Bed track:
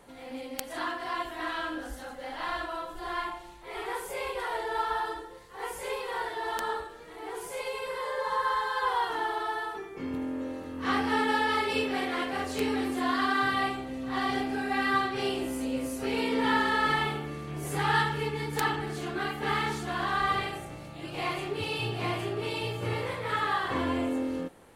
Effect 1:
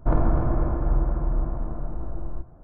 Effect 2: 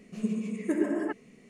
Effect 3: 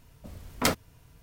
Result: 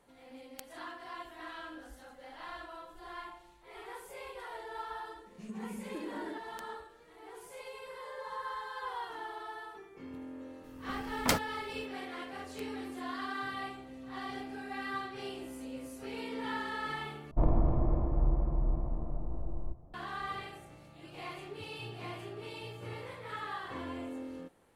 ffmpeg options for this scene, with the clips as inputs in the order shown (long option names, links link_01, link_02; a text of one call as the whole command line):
ffmpeg -i bed.wav -i cue0.wav -i cue1.wav -i cue2.wav -filter_complex "[0:a]volume=-11.5dB[link_01];[2:a]acompressor=threshold=-30dB:ratio=6:attack=3.2:release=140:knee=1:detection=peak[link_02];[1:a]equalizer=frequency=1500:width_type=o:width=0.45:gain=-14[link_03];[link_01]asplit=2[link_04][link_05];[link_04]atrim=end=17.314[link_06];[link_03]atrim=end=2.63,asetpts=PTS-STARTPTS,volume=-6dB[link_07];[link_05]atrim=start=19.936[link_08];[link_02]atrim=end=1.49,asetpts=PTS-STARTPTS,volume=-7.5dB,afade=type=in:duration=0.004:curve=hsin,afade=type=out:start_time=1.486:duration=0.004:curve=hsin,adelay=5260[link_09];[3:a]atrim=end=1.22,asetpts=PTS-STARTPTS,volume=-3.5dB,afade=type=in:duration=0.004:curve=hsin,afade=type=out:start_time=1.216:duration=0.004:curve=hsin,adelay=10640[link_10];[link_06][link_07]acrossfade=duration=0.004:curve1=hsin:curve2=hsin[link_11];[link_11][link_08]acrossfade=duration=0.004:curve1=hsin:curve2=hsin[link_12];[link_12][link_09][link_10]amix=inputs=3:normalize=0" out.wav